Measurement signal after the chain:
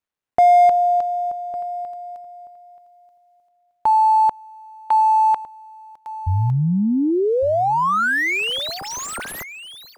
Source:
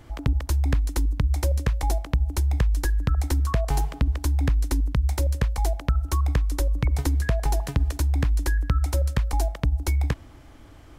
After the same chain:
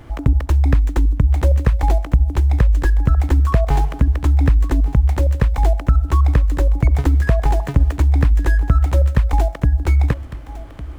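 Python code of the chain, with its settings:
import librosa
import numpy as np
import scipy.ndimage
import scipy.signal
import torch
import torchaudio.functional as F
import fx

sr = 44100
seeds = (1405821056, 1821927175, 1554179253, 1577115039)

y = scipy.ndimage.median_filter(x, 9, mode='constant')
y = y + 10.0 ** (-16.5 / 20.0) * np.pad(y, (int(1156 * sr / 1000.0), 0))[:len(y)]
y = fx.slew_limit(y, sr, full_power_hz=93.0)
y = y * librosa.db_to_amplitude(8.0)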